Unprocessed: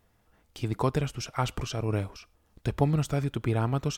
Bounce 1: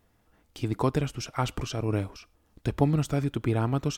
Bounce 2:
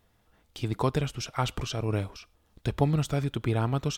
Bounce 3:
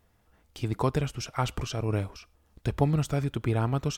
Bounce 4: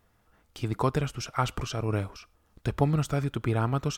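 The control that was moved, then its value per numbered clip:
peaking EQ, frequency: 290 Hz, 3.6 kHz, 65 Hz, 1.3 kHz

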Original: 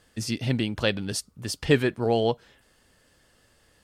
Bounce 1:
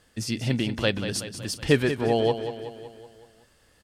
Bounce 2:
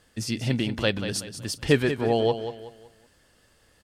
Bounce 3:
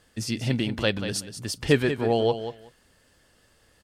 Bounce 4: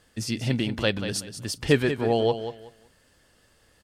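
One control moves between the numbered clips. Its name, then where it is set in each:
feedback delay, feedback: 56%, 35%, 16%, 23%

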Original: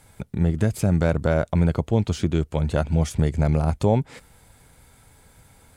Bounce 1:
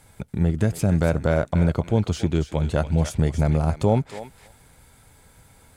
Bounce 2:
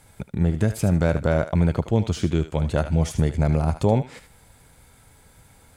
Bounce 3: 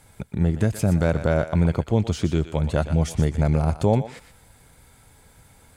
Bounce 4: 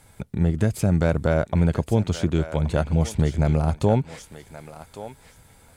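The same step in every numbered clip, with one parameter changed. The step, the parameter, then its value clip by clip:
thinning echo, time: 283 ms, 76 ms, 120 ms, 1126 ms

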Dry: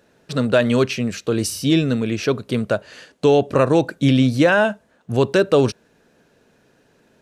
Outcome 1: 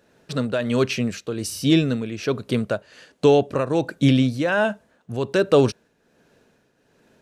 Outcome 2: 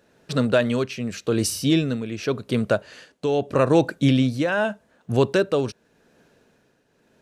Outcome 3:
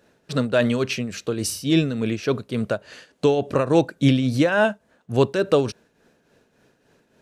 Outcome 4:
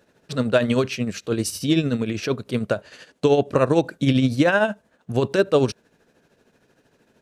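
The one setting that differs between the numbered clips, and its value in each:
tremolo, rate: 1.3 Hz, 0.84 Hz, 3.5 Hz, 13 Hz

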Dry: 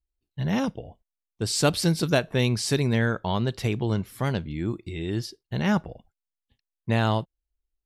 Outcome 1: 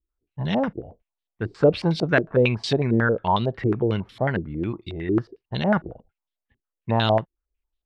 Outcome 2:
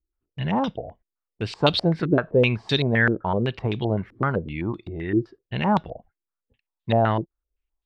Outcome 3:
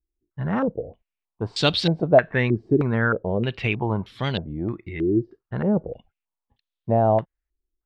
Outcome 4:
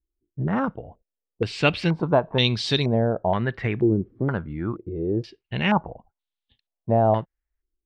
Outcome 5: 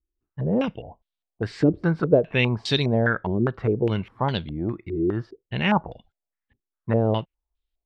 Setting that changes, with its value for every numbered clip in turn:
step-sequenced low-pass, rate: 11 Hz, 7.8 Hz, 3.2 Hz, 2.1 Hz, 4.9 Hz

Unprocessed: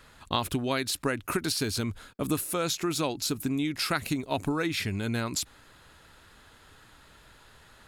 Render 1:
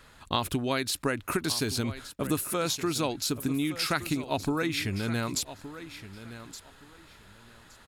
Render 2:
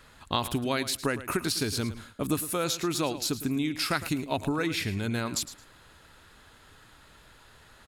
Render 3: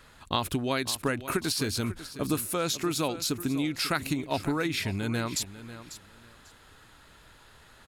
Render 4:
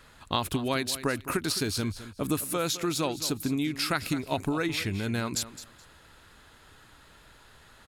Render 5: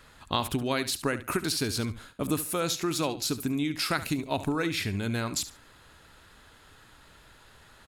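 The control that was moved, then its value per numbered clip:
feedback delay, time: 1169 ms, 109 ms, 545 ms, 212 ms, 71 ms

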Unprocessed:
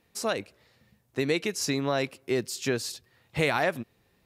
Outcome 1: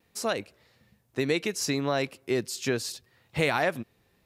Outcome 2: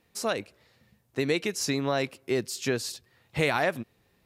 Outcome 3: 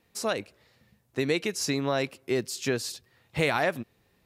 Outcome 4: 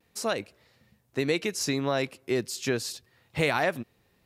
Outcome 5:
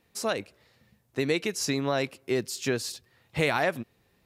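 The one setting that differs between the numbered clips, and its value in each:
vibrato, rate: 0.69 Hz, 5.2 Hz, 3 Hz, 0.33 Hz, 11 Hz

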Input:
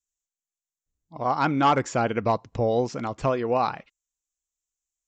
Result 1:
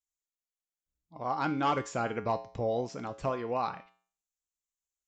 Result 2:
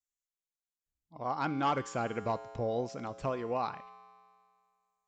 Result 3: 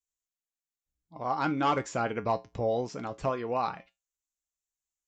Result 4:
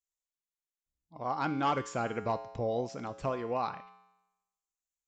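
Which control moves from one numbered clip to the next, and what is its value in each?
feedback comb, decay: 0.44 s, 2.1 s, 0.2 s, 0.95 s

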